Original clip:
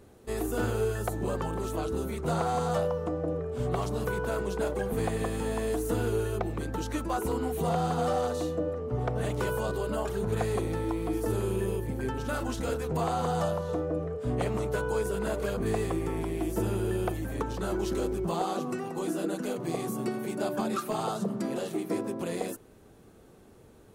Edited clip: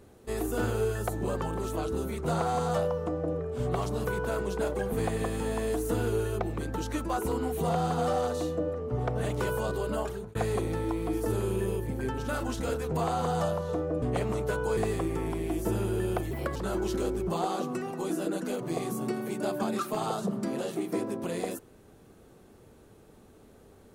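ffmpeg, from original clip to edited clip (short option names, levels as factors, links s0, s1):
-filter_complex "[0:a]asplit=6[s0][s1][s2][s3][s4][s5];[s0]atrim=end=10.35,asetpts=PTS-STARTPTS,afade=t=out:st=10.01:d=0.34[s6];[s1]atrim=start=10.35:end=14.022,asetpts=PTS-STARTPTS,afade=t=in:d=0.004:c=hsin[s7];[s2]atrim=start=14.268:end=15.022[s8];[s3]atrim=start=15.678:end=17.224[s9];[s4]atrim=start=17.22:end=17.53,asetpts=PTS-STARTPTS,asetrate=55566,aresample=44100[s10];[s5]atrim=start=17.526[s11];[s6][s7]concat=n=2:v=0:a=1[s12];[s12][s8]acrossfade=d=0.004:c1=hsin:c2=hsin[s13];[s13][s9]acrossfade=d=0.004:c1=hsin:c2=hsin[s14];[s14][s10]acrossfade=d=0.004:c1=hsin:c2=hsin[s15];[s15][s11]acrossfade=d=0.004:c1=hsin:c2=hsin"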